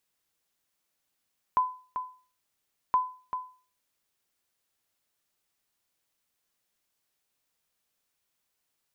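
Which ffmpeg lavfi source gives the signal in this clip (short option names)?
-f lavfi -i "aevalsrc='0.15*(sin(2*PI*1010*mod(t,1.37))*exp(-6.91*mod(t,1.37)/0.39)+0.355*sin(2*PI*1010*max(mod(t,1.37)-0.39,0))*exp(-6.91*max(mod(t,1.37)-0.39,0)/0.39))':d=2.74:s=44100"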